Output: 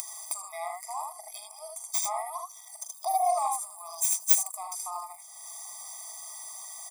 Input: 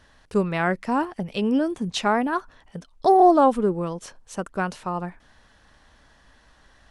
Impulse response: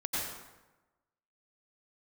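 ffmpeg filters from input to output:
-af "highpass=frequency=640:poles=1,bandreject=frequency=980:width=17,aecho=1:1:42|77:0.376|0.668,acompressor=mode=upward:threshold=-24dB:ratio=2.5,aexciter=amount=7.8:drive=6.9:freq=5200,equalizer=frequency=2400:width_type=o:width=0.21:gain=-9.5,crystalizer=i=2:c=0,deesser=0.8,asetnsamples=nb_out_samples=441:pad=0,asendcmd='3.25 highshelf g 11.5;4.63 highshelf g 6',highshelf=frequency=3900:gain=6.5,afftfilt=real='re*eq(mod(floor(b*sr/1024/640),2),1)':imag='im*eq(mod(floor(b*sr/1024/640),2),1)':win_size=1024:overlap=0.75,volume=-5.5dB"

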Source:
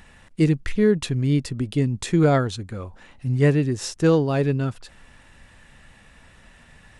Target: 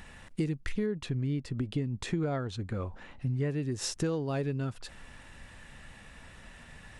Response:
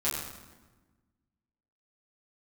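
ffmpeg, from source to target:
-filter_complex "[0:a]acompressor=threshold=-29dB:ratio=6,asettb=1/sr,asplit=3[link_01][link_02][link_03];[link_01]atrim=end=0.864[link_04];[link_02]atrim=start=0.86:end=3.5,asetpts=PTS-STARTPTS,afade=type=in:duration=0.004:curve=qsin,afade=type=out:start_time=2.636:duration=0.004:curve=qsin,aemphasis=mode=reproduction:type=50kf[link_05];[link_03]atrim=start=3.496[link_06];[link_04][link_05]acrossfade=duration=0.004:curve1=hsin:curve2=qsin[link_07];[link_07][link_06]acrossfade=duration=0.004:curve1=qsin:curve2=hsin"

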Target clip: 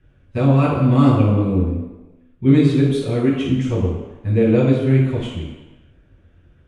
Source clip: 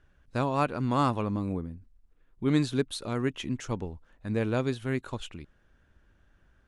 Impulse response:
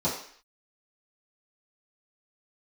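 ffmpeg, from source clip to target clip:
-filter_complex "[0:a]flanger=delay=5.9:depth=9.3:regen=-38:speed=1:shape=triangular[link_01];[1:a]atrim=start_sample=2205,asetrate=23373,aresample=44100[link_02];[link_01][link_02]afir=irnorm=-1:irlink=0,volume=-3dB"

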